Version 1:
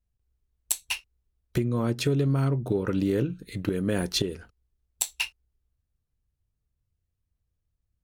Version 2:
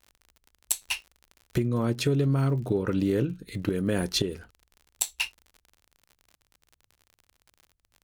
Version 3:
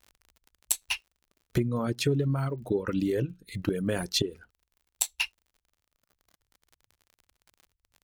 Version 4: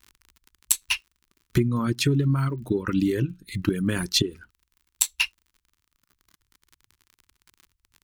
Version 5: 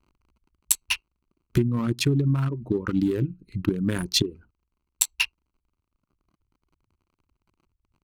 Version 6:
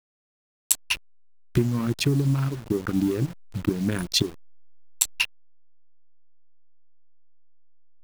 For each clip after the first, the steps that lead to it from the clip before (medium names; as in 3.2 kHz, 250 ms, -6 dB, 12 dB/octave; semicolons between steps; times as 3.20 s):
crackle 50 per s -40 dBFS
reverb removal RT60 2 s
high-order bell 600 Hz -11 dB 1.1 oct; trim +5.5 dB
local Wiener filter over 25 samples
send-on-delta sampling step -35.5 dBFS